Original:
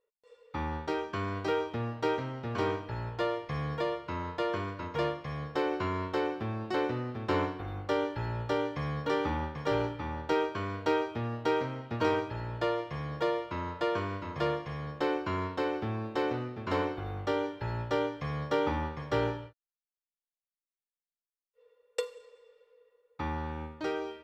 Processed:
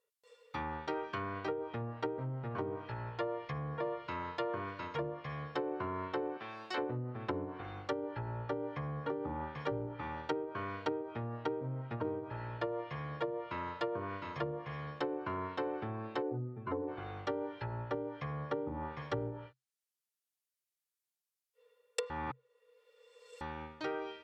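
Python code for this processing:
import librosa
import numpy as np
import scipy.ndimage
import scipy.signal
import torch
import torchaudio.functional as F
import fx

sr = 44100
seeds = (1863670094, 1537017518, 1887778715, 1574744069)

y = fx.highpass(x, sr, hz=750.0, slope=6, at=(6.37, 6.78))
y = fx.spec_expand(y, sr, power=1.8, at=(16.21, 16.87), fade=0.02)
y = fx.edit(y, sr, fx.reverse_span(start_s=22.1, length_s=1.31), tone=tone)
y = fx.peak_eq(y, sr, hz=130.0, db=11.0, octaves=0.24)
y = fx.env_lowpass_down(y, sr, base_hz=400.0, full_db=-25.0)
y = fx.tilt_eq(y, sr, slope=2.5)
y = y * 10.0 ** (-2.0 / 20.0)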